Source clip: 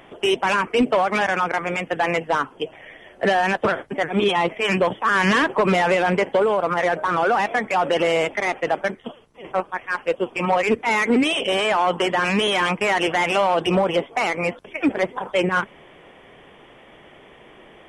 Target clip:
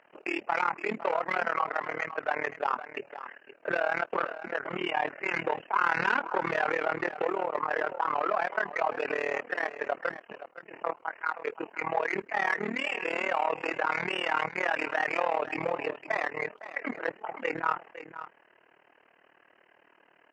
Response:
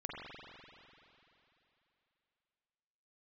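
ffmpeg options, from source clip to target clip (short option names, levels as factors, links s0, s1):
-filter_complex "[0:a]asplit=2[s0][s1];[s1]acompressor=threshold=0.0282:ratio=6,volume=0.841[s2];[s0][s2]amix=inputs=2:normalize=0,agate=range=0.355:threshold=0.0158:ratio=16:detection=peak,bandpass=f=1500:t=q:w=0.69:csg=0,asplit=2[s3][s4];[s4]aecho=0:1:453:0.224[s5];[s3][s5]amix=inputs=2:normalize=0,asetrate=38808,aresample=44100,tremolo=f=38:d=0.947,volume=0.631"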